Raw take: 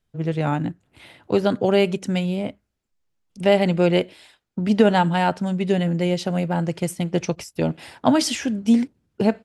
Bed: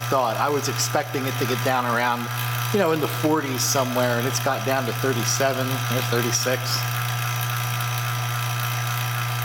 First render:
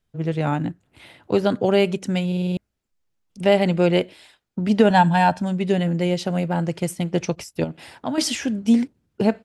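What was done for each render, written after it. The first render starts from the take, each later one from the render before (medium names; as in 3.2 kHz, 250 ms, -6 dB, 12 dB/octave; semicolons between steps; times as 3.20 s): 2.27 s: stutter in place 0.05 s, 6 plays; 4.90–5.42 s: comb 1.2 ms, depth 69%; 7.64–8.18 s: compression 1.5:1, threshold -39 dBFS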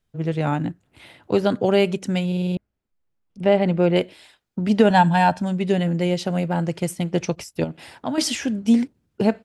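2.55–3.96 s: low-pass 1.7 kHz 6 dB/octave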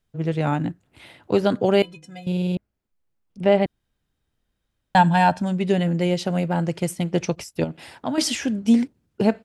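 1.82–2.27 s: inharmonic resonator 150 Hz, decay 0.33 s, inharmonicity 0.03; 3.66–4.95 s: room tone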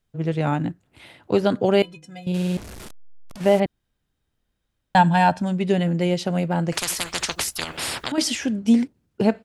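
2.34–3.60 s: one-bit delta coder 64 kbps, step -32 dBFS; 6.72–8.12 s: spectrum-flattening compressor 10:1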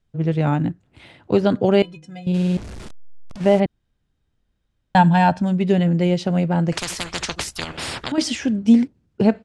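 Bessel low-pass 7.1 kHz, order 8; bass shelf 280 Hz +6 dB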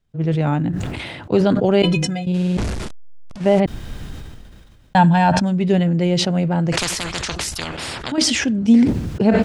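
decay stretcher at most 29 dB/s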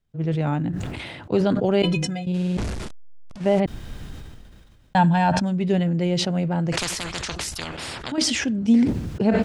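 trim -4.5 dB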